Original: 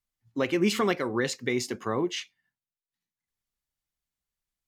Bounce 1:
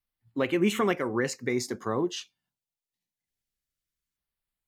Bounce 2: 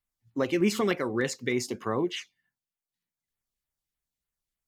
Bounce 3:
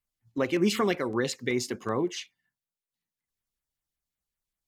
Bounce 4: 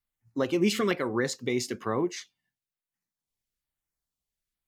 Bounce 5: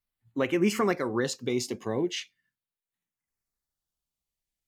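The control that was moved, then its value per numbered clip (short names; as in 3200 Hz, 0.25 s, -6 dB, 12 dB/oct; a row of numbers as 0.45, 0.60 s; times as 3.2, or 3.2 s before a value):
LFO notch, rate: 0.24, 3.3, 5.3, 1.1, 0.39 Hz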